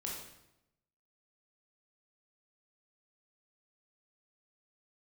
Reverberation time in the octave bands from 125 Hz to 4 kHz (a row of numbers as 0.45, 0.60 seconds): 1.0, 1.0, 0.90, 0.85, 0.75, 0.70 seconds